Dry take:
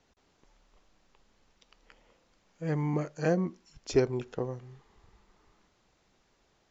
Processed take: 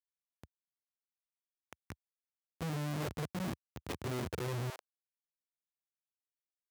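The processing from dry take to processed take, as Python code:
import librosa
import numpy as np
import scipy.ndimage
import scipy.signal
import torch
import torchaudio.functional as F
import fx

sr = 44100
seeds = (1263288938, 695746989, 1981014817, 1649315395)

y = fx.over_compress(x, sr, threshold_db=-35.0, ratio=-0.5)
y = fx.air_absorb(y, sr, metres=360.0)
y = fx.notch(y, sr, hz=4000.0, q=6.7)
y = fx.schmitt(y, sr, flips_db=-43.0)
y = fx.highpass(y, sr, hz=fx.steps((0.0, 74.0), (4.7, 560.0)), slope=24)
y = F.gain(torch.from_numpy(y), 6.5).numpy()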